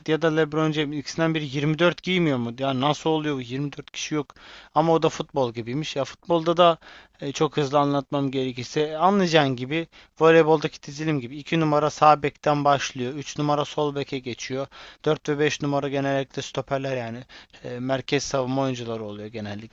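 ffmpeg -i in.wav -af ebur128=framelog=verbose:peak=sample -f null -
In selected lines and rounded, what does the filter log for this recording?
Integrated loudness:
  I:         -23.7 LUFS
  Threshold: -34.0 LUFS
Loudness range:
  LRA:         5.6 LU
  Threshold: -43.9 LUFS
  LRA low:   -26.9 LUFS
  LRA high:  -21.2 LUFS
Sample peak:
  Peak:       -2.6 dBFS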